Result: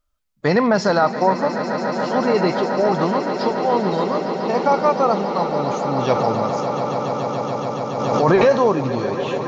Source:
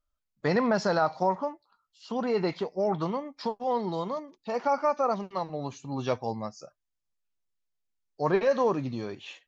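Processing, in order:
echo that builds up and dies away 142 ms, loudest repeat 8, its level −13 dB
0:06.15–0:08.60: background raised ahead of every attack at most 31 dB per second
level +8.5 dB

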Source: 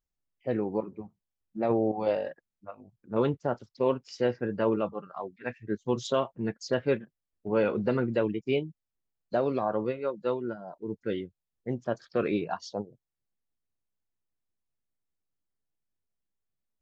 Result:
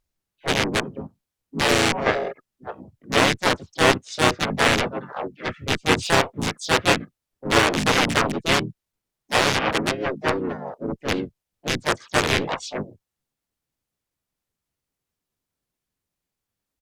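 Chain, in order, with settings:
loose part that buzzes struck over −32 dBFS, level −19 dBFS
harmonic generator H 2 −15 dB, 4 −24 dB, 7 −10 dB, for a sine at −11 dBFS
pitch-shifted copies added −5 semitones −1 dB, +4 semitones −2 dB, +7 semitones −16 dB
level +4 dB

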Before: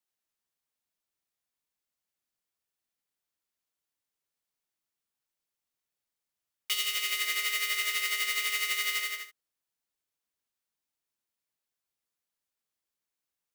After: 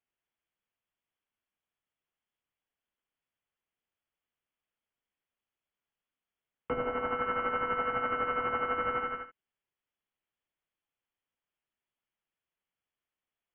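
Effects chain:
voice inversion scrambler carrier 3,400 Hz
level +1 dB

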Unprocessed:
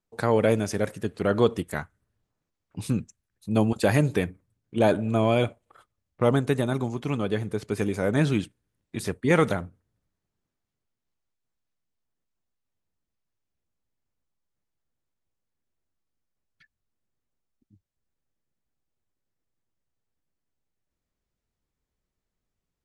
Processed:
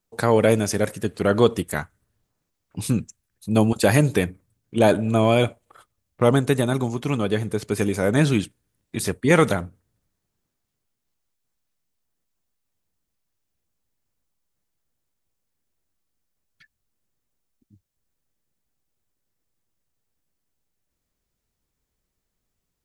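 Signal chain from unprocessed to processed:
high-shelf EQ 5,500 Hz +7.5 dB
level +4 dB

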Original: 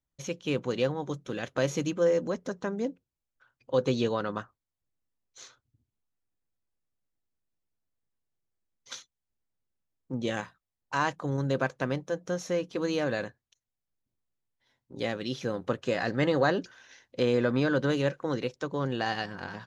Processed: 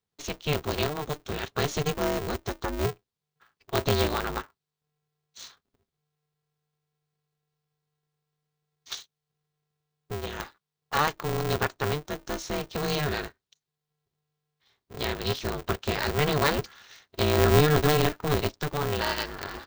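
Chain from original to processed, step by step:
graphic EQ with 10 bands 125 Hz −9 dB, 250 Hz +11 dB, 500 Hz −7 dB, 1,000 Hz +6 dB, 4,000 Hz +9 dB
0:08.93–0:10.40: downward compressor 3 to 1, threshold −32 dBFS, peak gain reduction 8 dB
0:17.38–0:18.69: parametric band 120 Hz +11.5 dB 1.5 octaves
ring modulator with a square carrier 150 Hz
level −1 dB

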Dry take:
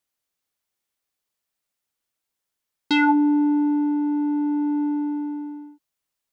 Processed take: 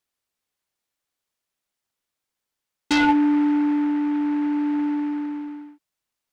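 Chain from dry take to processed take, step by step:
short delay modulated by noise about 1,300 Hz, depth 0.041 ms

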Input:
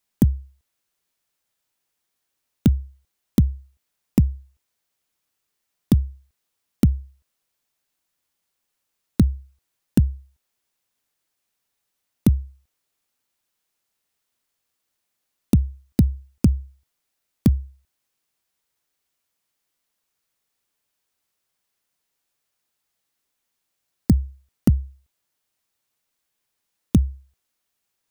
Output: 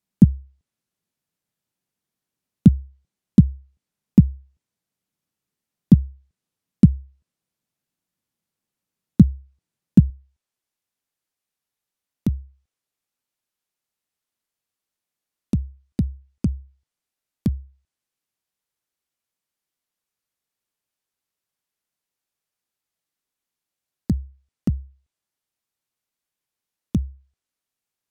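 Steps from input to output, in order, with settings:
treble cut that deepens with the level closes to 860 Hz, closed at −15.5 dBFS
parametric band 170 Hz +15 dB 2 octaves, from 0:10.10 +3 dB
level −7.5 dB

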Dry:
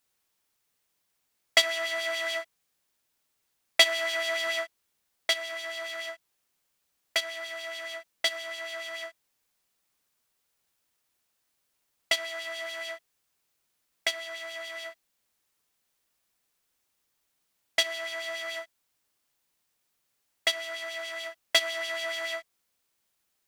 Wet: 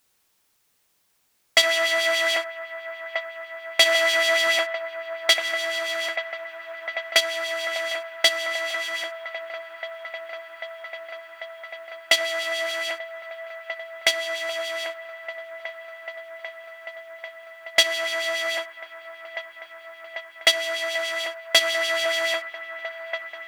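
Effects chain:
on a send: delay with a band-pass on its return 793 ms, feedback 84%, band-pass 990 Hz, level −10.5 dB
on the sum: boost into a limiter +10 dB
level −1 dB

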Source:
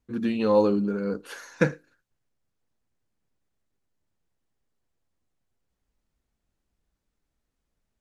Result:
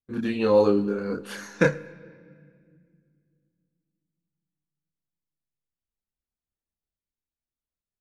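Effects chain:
noise gate with hold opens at −49 dBFS
multi-voice chorus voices 2, 0.39 Hz, delay 28 ms, depth 1.3 ms
harmonic and percussive parts rebalanced percussive +3 dB
on a send: convolution reverb RT60 2.0 s, pre-delay 91 ms, DRR 20 dB
on the sum: level +4 dB

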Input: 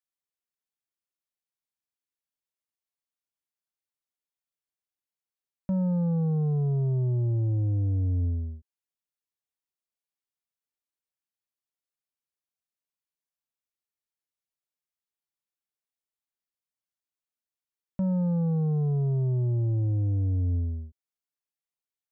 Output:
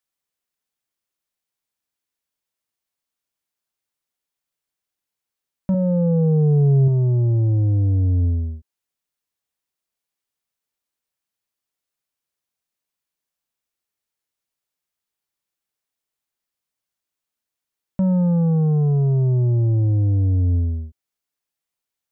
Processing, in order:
0:05.74–0:06.88: octave-band graphic EQ 125/250/500/1,000 Hz +6/−11/+10/−9 dB
level +8 dB

